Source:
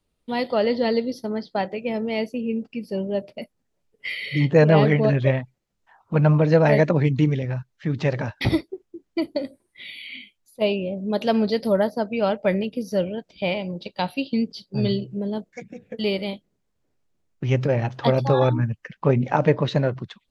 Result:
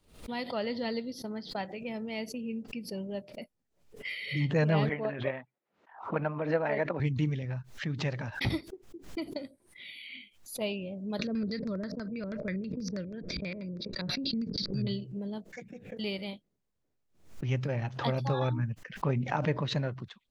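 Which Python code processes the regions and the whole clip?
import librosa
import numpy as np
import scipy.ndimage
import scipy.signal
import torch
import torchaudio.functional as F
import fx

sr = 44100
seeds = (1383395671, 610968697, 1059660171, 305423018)

y = fx.chain(x, sr, fx.transient(attack_db=7, sustain_db=2),
    fx.bandpass_edges(low_hz=340.0, high_hz=2100.0), at=(4.89, 7.0))
y = fx.chain(y, sr, fx.filter_lfo_lowpass(shape='square', hz=6.2, low_hz=520.0, high_hz=5000.0, q=1.0),
    fx.fixed_phaser(hz=3000.0, stages=6),
    fx.pre_swell(db_per_s=21.0), at=(11.19, 14.87))
y = fx.dynamic_eq(y, sr, hz=470.0, q=0.78, threshold_db=-32.0, ratio=4.0, max_db=-6)
y = fx.pre_swell(y, sr, db_per_s=120.0)
y = y * librosa.db_to_amplitude(-8.0)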